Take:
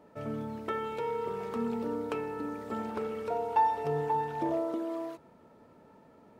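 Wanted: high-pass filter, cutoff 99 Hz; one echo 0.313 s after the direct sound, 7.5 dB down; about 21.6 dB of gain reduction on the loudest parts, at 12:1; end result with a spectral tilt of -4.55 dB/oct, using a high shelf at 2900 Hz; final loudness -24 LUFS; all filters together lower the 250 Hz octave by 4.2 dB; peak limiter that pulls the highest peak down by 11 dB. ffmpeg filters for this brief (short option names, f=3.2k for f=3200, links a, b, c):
-af "highpass=99,equalizer=f=250:t=o:g=-5.5,highshelf=f=2.9k:g=8.5,acompressor=threshold=-43dB:ratio=12,alimiter=level_in=16.5dB:limit=-24dB:level=0:latency=1,volume=-16.5dB,aecho=1:1:313:0.422,volume=24dB"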